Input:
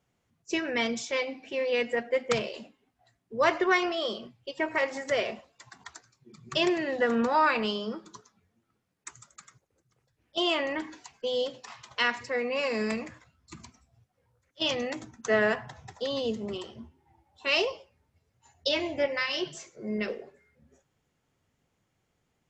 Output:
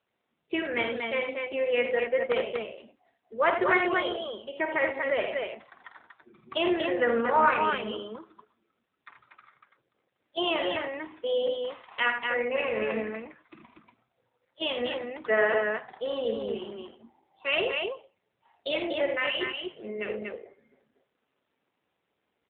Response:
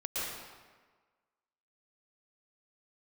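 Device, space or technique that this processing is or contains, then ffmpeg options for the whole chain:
telephone: -filter_complex "[0:a]asettb=1/sr,asplit=3[link_01][link_02][link_03];[link_01]atrim=end=18.824[link_04];[link_02]atrim=start=18.82:end=19.91,asetpts=PTS-STARTPTS,afade=type=in:duration=0.004:curve=qsin,afade=type=out:start_time=1.086:duration=0.004:curve=qsin,adynamicequalizer=threshold=0.00447:dfrequency=2800:dqfactor=6.4:tfrequency=2800:tqfactor=6.4:attack=5:release=100:ratio=0.375:range=2.5:mode=boostabove:tftype=bell[link_05];[link_03]atrim=start=19.906[link_06];[link_04][link_05]acrossfade=duration=0.004:curve1=hsin:curve2=qsin[link_07];[link_07][link_06]acrossfade=duration=0.004:curve1=qsin:curve2=hsin,highpass=290,lowpass=3600,aecho=1:1:49.56|81.63|239.1:0.398|0.398|0.631,volume=1dB" -ar 8000 -c:a libopencore_amrnb -b:a 7400

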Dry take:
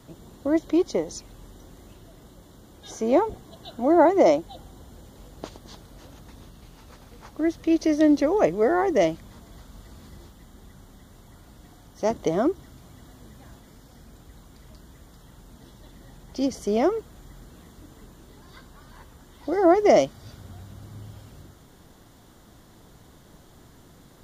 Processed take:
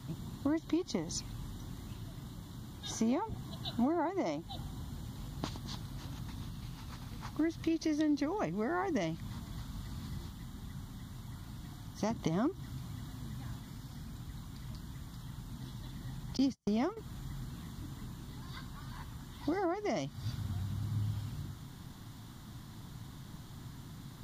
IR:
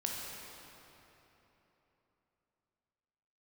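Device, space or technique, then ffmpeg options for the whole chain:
ASMR close-microphone chain: -filter_complex "[0:a]lowshelf=frequency=150:gain=6,acompressor=threshold=-26dB:ratio=8,highshelf=frequency=7600:gain=6.5,asettb=1/sr,asplit=3[link_01][link_02][link_03];[link_01]atrim=end=16.374[link_04];[link_02]atrim=start=16.37:end=16.97,asetpts=PTS-STARTPTS,afade=type=in:duration=0.004:curve=qsin,afade=type=out:start_time=0.596:duration=0.004:curve=qsin,agate=range=-44dB:threshold=-31dB:ratio=16:detection=peak[link_05];[link_03]atrim=start=16.966[link_06];[link_04][link_05]acrossfade=duration=0.004:curve1=hsin:curve2=qsin[link_07];[link_07][link_06]acrossfade=duration=0.004:curve1=qsin:curve2=hsin,equalizer=frequency=125:width_type=o:width=1:gain=11,equalizer=frequency=250:width_type=o:width=1:gain=6,equalizer=frequency=500:width_type=o:width=1:gain=-8,equalizer=frequency=1000:width_type=o:width=1:gain=7,equalizer=frequency=2000:width_type=o:width=1:gain=3,equalizer=frequency=4000:width_type=o:width=1:gain=7,volume=-6dB"

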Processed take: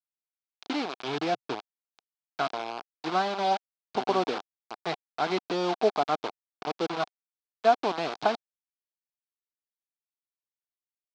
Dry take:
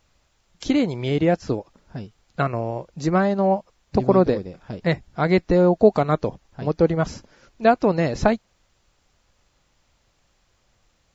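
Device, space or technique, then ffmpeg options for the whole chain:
hand-held game console: -filter_complex "[0:a]acrusher=bits=3:mix=0:aa=0.000001,highpass=420,equalizer=frequency=530:width_type=q:width=4:gain=-10,equalizer=frequency=750:width_type=q:width=4:gain=5,equalizer=frequency=1900:width_type=q:width=4:gain=-9,equalizer=frequency=2800:width_type=q:width=4:gain=-3,lowpass=frequency=4500:width=0.5412,lowpass=frequency=4500:width=1.3066,asettb=1/sr,asplit=3[link_01][link_02][link_03];[link_01]atrim=end=0.984[link_04];[link_02]atrim=start=0.98:end=1.59,asetpts=PTS-STARTPTS,afade=type=in:duration=0.004:curve=qsin,afade=type=out:start_time=0.606:duration=0.004:curve=qsin,equalizer=frequency=130:width=2.6:gain=5.5[link_05];[link_03]atrim=start=1.586[link_06];[link_04][link_05]acrossfade=duration=0.004:curve1=hsin:curve2=qsin[link_07];[link_07][link_06]acrossfade=duration=0.004:curve1=qsin:curve2=hsin,volume=-4.5dB"

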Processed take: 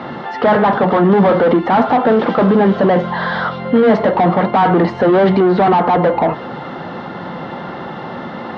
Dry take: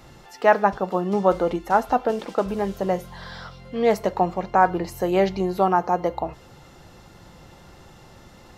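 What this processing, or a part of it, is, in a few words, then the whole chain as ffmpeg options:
overdrive pedal into a guitar cabinet: -filter_complex "[0:a]asplit=2[link_01][link_02];[link_02]highpass=frequency=720:poles=1,volume=35dB,asoftclip=type=tanh:threshold=-3dB[link_03];[link_01][link_03]amix=inputs=2:normalize=0,lowpass=frequency=1500:poles=1,volume=-6dB,highpass=94,equalizer=frequency=170:width_type=q:width=4:gain=6,equalizer=frequency=240:width_type=q:width=4:gain=9,equalizer=frequency=2500:width_type=q:width=4:gain=-9,lowpass=frequency=3500:width=0.5412,lowpass=frequency=3500:width=1.3066,volume=-1dB"

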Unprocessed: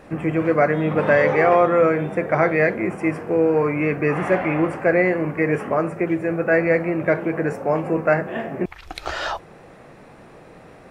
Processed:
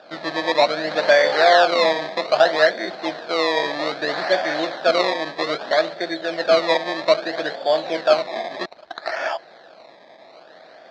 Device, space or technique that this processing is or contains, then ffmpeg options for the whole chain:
circuit-bent sampling toy: -af "acrusher=samples=21:mix=1:aa=0.000001:lfo=1:lforange=21:lforate=0.62,highpass=430,equalizer=frequency=430:width_type=q:width=4:gain=-5,equalizer=frequency=650:width_type=q:width=4:gain=10,equalizer=frequency=1100:width_type=q:width=4:gain=-3,equalizer=frequency=1700:width_type=q:width=4:gain=7,equalizer=frequency=2800:width_type=q:width=4:gain=-6,equalizer=frequency=4100:width_type=q:width=4:gain=10,lowpass=frequency=4700:width=0.5412,lowpass=frequency=4700:width=1.3066,volume=-1dB"

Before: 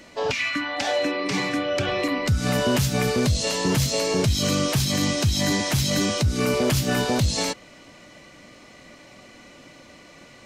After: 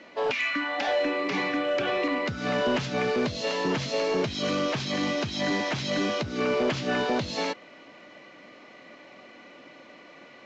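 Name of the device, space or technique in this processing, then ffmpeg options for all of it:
telephone: -af "highpass=260,lowpass=3100,asoftclip=type=tanh:threshold=-17.5dB" -ar 16000 -c:a pcm_mulaw

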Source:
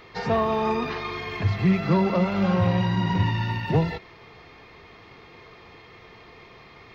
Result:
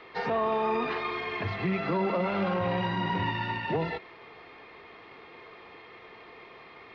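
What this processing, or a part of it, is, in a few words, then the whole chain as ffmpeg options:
DJ mixer with the lows and highs turned down: -filter_complex "[0:a]acrossover=split=240 4200:gain=0.224 1 0.0708[link_01][link_02][link_03];[link_01][link_02][link_03]amix=inputs=3:normalize=0,alimiter=limit=-20dB:level=0:latency=1:release=15"

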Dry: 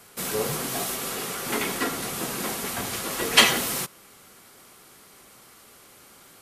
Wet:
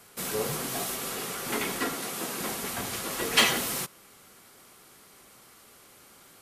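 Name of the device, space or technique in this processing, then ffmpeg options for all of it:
saturation between pre-emphasis and de-emphasis: -filter_complex "[0:a]highshelf=frequency=4700:gain=10.5,asoftclip=type=tanh:threshold=-5dB,highshelf=frequency=4700:gain=-10.5,asettb=1/sr,asplit=3[link_01][link_02][link_03];[link_01]atrim=end=1.944[link_04];[link_02]atrim=start=1.94:end=2.41,asetpts=PTS-STARTPTS,afade=type=in:duration=0.004:curve=qsin,afade=type=out:start_time=0.466:duration=0.004:curve=qsin,highpass=190[link_05];[link_03]atrim=start=2.406[link_06];[link_04][link_05]acrossfade=duration=0.004:curve1=hsin:curve2=qsin[link_07];[link_07][link_06]acrossfade=duration=0.004:curve1=qsin:curve2=hsin,volume=-3dB"

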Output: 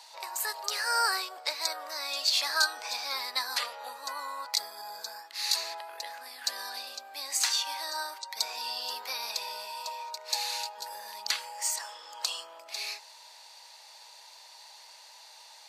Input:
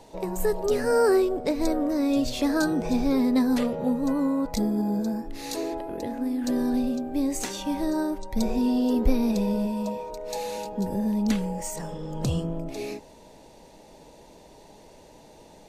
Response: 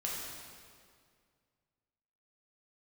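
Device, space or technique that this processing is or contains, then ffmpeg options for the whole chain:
headphones lying on a table: -af "highpass=frequency=1000:width=0.5412,highpass=frequency=1000:width=1.3066,equalizer=frequency=4500:width_type=o:width=0.44:gain=9.5,volume=4dB"

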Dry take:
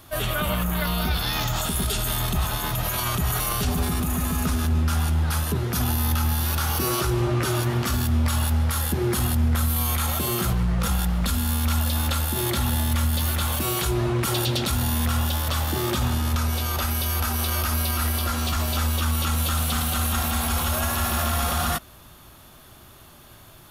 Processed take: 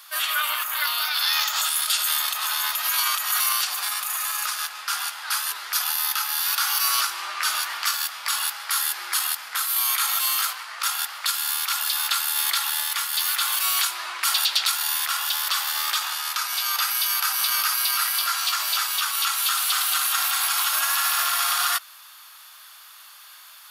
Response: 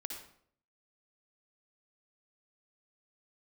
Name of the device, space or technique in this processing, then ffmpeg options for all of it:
headphones lying on a table: -af "highpass=frequency=1100:width=0.5412,highpass=frequency=1100:width=1.3066,equalizer=frequency=4700:width_type=o:width=0.28:gain=6,volume=5dB"

